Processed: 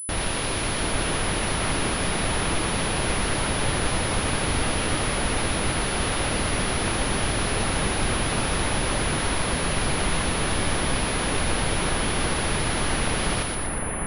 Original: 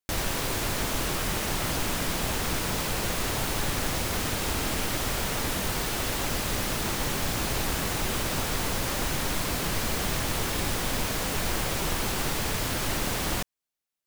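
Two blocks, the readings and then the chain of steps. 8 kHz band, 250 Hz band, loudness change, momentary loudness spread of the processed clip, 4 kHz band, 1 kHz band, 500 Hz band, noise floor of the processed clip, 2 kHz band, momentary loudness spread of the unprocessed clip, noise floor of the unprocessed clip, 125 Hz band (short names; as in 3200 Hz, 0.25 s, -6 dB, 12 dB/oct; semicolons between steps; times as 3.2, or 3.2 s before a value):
+3.5 dB, +5.0 dB, +3.5 dB, 1 LU, +3.0 dB, +5.0 dB, +5.0 dB, -27 dBFS, +5.0 dB, 0 LU, -80 dBFS, +5.0 dB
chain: split-band echo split 2300 Hz, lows 0.751 s, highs 0.119 s, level -3 dB; pulse-width modulation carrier 10000 Hz; gain +2.5 dB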